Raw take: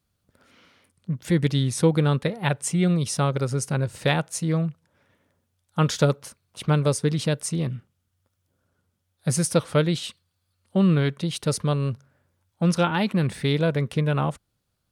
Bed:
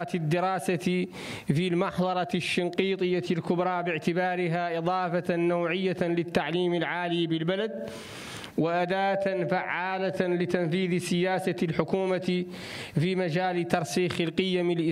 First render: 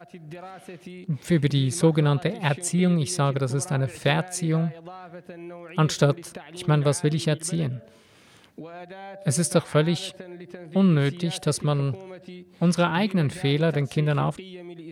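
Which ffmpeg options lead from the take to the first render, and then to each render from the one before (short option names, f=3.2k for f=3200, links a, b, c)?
-filter_complex "[1:a]volume=-14dB[a];[0:a][a]amix=inputs=2:normalize=0"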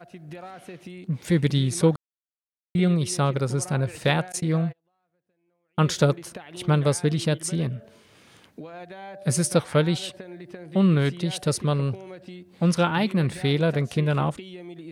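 -filter_complex "[0:a]asettb=1/sr,asplit=3[a][b][c];[a]atrim=end=4.324[d];[b]atrim=start=4.32:end=5.88,asetpts=PTS-STARTPTS,afade=t=in:d=0.004:c=qsin,afade=t=out:st=1.556:d=0.004:c=qsin,agate=range=-33dB:threshold=-34dB:ratio=16:release=100:detection=peak[e];[c]atrim=start=5.876[f];[d][e]acrossfade=d=0.004:c1=hsin:c2=qsin[g];[g][f]acrossfade=d=0.004:c1=qsin:c2=hsin,asplit=3[h][i][j];[h]atrim=end=1.96,asetpts=PTS-STARTPTS,afade=t=out:st=1.956:d=0.004:c=hsin[k];[i]atrim=start=1.96:end=2.75,asetpts=PTS-STARTPTS,volume=0[l];[j]atrim=start=2.75,asetpts=PTS-STARTPTS,afade=t=in:d=0.004:c=hsin[m];[k][l][m]concat=n=3:v=0:a=1"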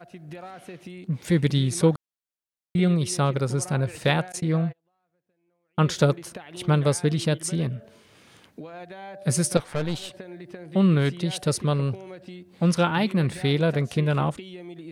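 -filter_complex "[0:a]asettb=1/sr,asplit=3[a][b][c];[a]atrim=end=4.314[d];[b]atrim=start=4.31:end=5.97,asetpts=PTS-STARTPTS,afade=t=in:d=0.004:c=qsin,afade=t=out:st=1.656:d=0.004:c=qsin,highshelf=f=5.1k:g=-5[e];[c]atrim=start=5.966[f];[d][e]acrossfade=d=0.004:c1=hsin:c2=qsin[g];[g][f]acrossfade=d=0.004:c1=qsin:c2=hsin,asettb=1/sr,asplit=3[h][i][j];[h]atrim=end=9.574[k];[i]atrim=start=9.57:end=10.11,asetpts=PTS-STARTPTS,afade=t=in:d=0.004:c=qsin,afade=t=out:st=0.536:d=0.004:c=qsin,aeval=exprs='(tanh(14.1*val(0)+0.75)-tanh(0.75))/14.1':c=same[l];[j]atrim=start=10.106[m];[k][l]acrossfade=d=0.004:c1=hsin:c2=qsin[n];[n][m]acrossfade=d=0.004:c1=qsin:c2=hsin"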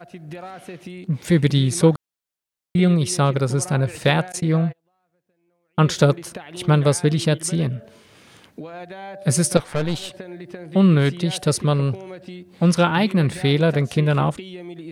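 -af "volume=4.5dB,alimiter=limit=-2dB:level=0:latency=1"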